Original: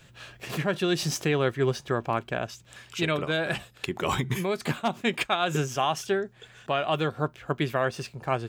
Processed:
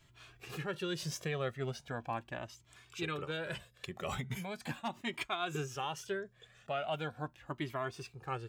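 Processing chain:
flanger whose copies keep moving one way rising 0.39 Hz
level −6.5 dB

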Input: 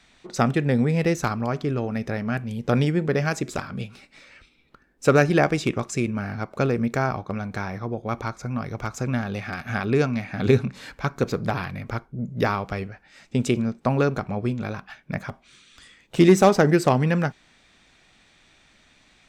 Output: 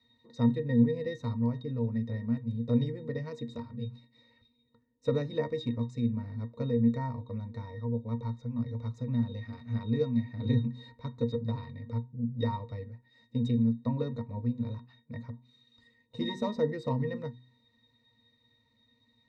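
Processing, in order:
high shelf with overshoot 2,900 Hz +6.5 dB, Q 1.5
resonances in every octave A#, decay 0.14 s
hum removal 62.45 Hz, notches 6
level +1 dB

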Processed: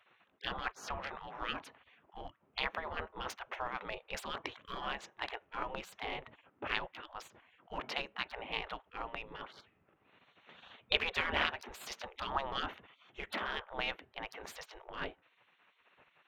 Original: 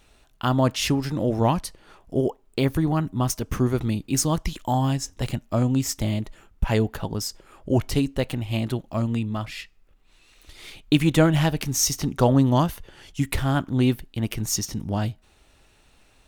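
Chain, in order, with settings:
adaptive Wiener filter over 9 samples
high-frequency loss of the air 300 metres
gate on every frequency bin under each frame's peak −25 dB weak
level +5 dB

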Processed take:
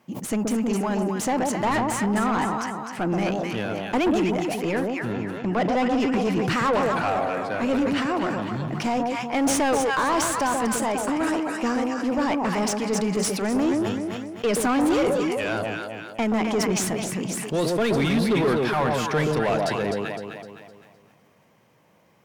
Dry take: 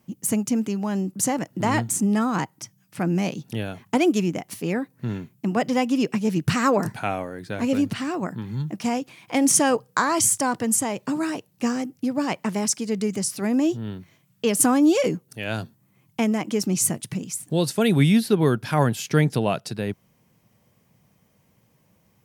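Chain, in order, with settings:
0:04.94–0:06.00: Bessel low-pass filter 6,700 Hz
on a send: delay that swaps between a low-pass and a high-pass 128 ms, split 940 Hz, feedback 64%, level −4 dB
on the sum: mid-hump overdrive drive 25 dB, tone 1,700 Hz, clips at −4 dBFS
level that may fall only so fast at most 29 dB per second
level −9 dB

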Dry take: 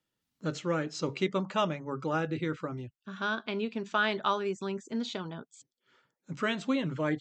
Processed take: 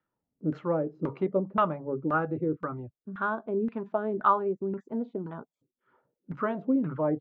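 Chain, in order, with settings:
auto-filter low-pass saw down 1.9 Hz 270–1,600 Hz

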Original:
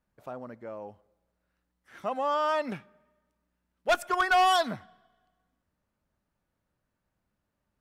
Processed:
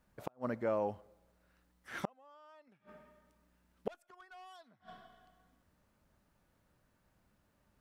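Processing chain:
gate with flip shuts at −28 dBFS, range −39 dB
level +7 dB

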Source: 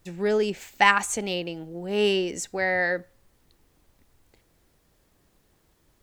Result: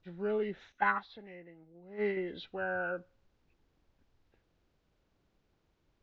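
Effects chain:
hearing-aid frequency compression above 1,000 Hz 1.5 to 1
high-frequency loss of the air 200 metres
0:00.72–0:02.17: noise gate −23 dBFS, range −11 dB
level −9 dB

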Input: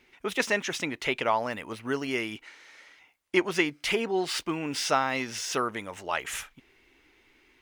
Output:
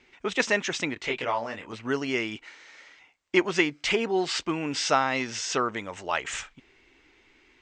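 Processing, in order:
Butterworth low-pass 8,300 Hz 96 dB per octave
0:00.94–0:01.73: micro pitch shift up and down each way 22 cents
level +2 dB

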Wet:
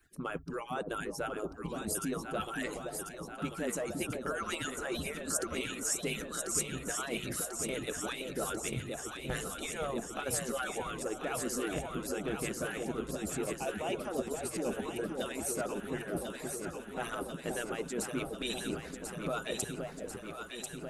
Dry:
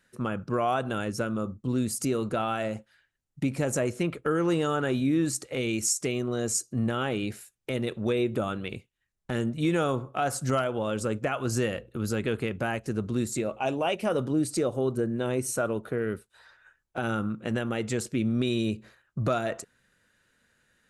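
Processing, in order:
harmonic-percussive split with one part muted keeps percussive
low-shelf EQ 270 Hz +11.5 dB
mains-hum notches 50/100/150 Hz
reversed playback
downward compressor 6 to 1, threshold −41 dBFS, peak gain reduction 20.5 dB
reversed playback
high-shelf EQ 9,900 Hz +12 dB
on a send: delay that swaps between a low-pass and a high-pass 521 ms, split 820 Hz, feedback 83%, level −4 dB
on the sum: level +5.5 dB

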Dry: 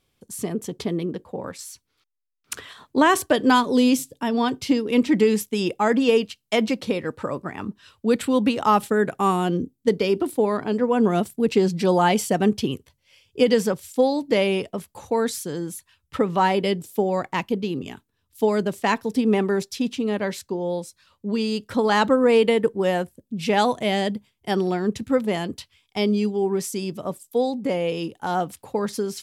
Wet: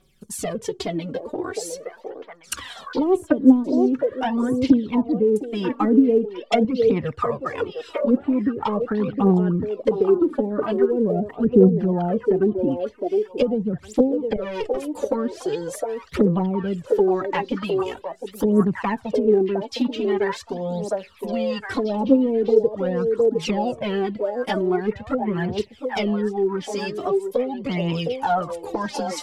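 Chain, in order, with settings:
0:14.36–0:14.77: tube saturation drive 28 dB, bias 0.55
flanger swept by the level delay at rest 5.3 ms, full sweep at −15 dBFS
treble cut that deepens with the level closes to 420 Hz, closed at −18.5 dBFS
0:05.77–0:06.65: comb filter 4.1 ms, depth 89%
echo through a band-pass that steps 710 ms, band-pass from 520 Hz, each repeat 1.4 octaves, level −1 dB
phase shifter 0.43 Hz, delay 3.8 ms, feedback 65%
in parallel at +3 dB: downward compressor, threshold −31 dBFS, peak gain reduction 22 dB
on the sum: level −1 dB

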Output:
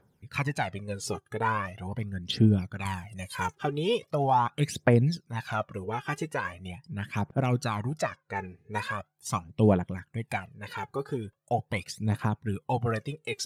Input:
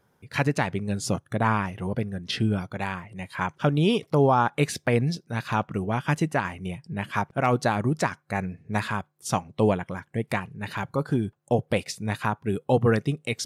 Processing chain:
0:08.01–0:08.46: Bessel low-pass filter 5,100 Hz
phase shifter 0.41 Hz, delay 2.6 ms, feedback 71%
0:02.85–0:03.55: bass and treble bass +7 dB, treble +15 dB
level −7 dB

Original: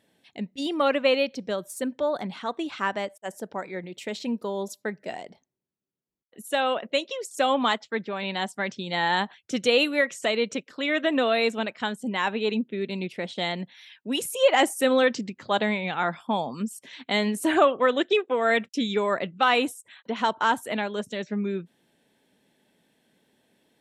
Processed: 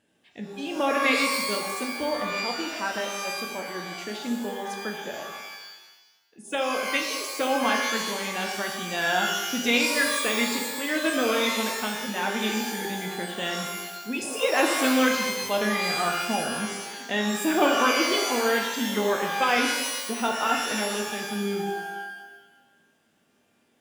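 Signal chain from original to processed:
formants moved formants −2 semitones
reverb with rising layers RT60 1.1 s, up +12 semitones, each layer −2 dB, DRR 2 dB
level −3.5 dB

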